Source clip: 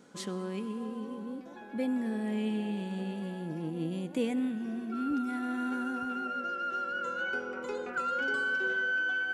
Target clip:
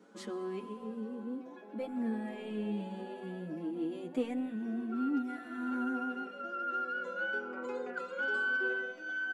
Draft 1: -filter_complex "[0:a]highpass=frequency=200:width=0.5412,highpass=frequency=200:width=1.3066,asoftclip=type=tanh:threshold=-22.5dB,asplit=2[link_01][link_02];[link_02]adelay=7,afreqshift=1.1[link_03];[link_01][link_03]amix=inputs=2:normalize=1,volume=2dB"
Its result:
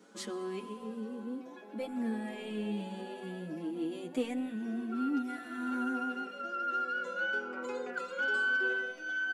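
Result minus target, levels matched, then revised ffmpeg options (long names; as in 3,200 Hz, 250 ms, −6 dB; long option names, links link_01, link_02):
4,000 Hz band +4.0 dB
-filter_complex "[0:a]highpass=frequency=200:width=0.5412,highpass=frequency=200:width=1.3066,highshelf=frequency=2600:gain=-9.5,asoftclip=type=tanh:threshold=-22.5dB,asplit=2[link_01][link_02];[link_02]adelay=7,afreqshift=1.1[link_03];[link_01][link_03]amix=inputs=2:normalize=1,volume=2dB"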